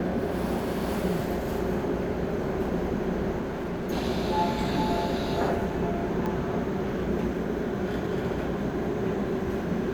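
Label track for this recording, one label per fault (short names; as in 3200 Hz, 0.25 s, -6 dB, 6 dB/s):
3.400000	3.910000	clipped -28.5 dBFS
6.260000	6.260000	pop -20 dBFS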